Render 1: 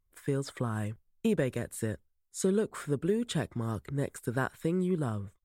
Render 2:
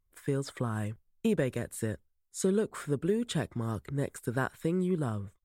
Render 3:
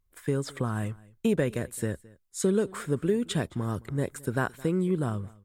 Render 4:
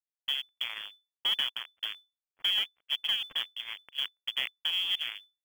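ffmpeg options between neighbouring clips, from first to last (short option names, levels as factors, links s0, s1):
-af anull
-af "aecho=1:1:216:0.0708,volume=1.41"
-af "acrusher=bits=3:mix=0:aa=0.5,lowpass=f=3000:t=q:w=0.5098,lowpass=f=3000:t=q:w=0.6013,lowpass=f=3000:t=q:w=0.9,lowpass=f=3000:t=q:w=2.563,afreqshift=-3500,acrusher=bits=5:mode=log:mix=0:aa=0.000001,volume=0.531"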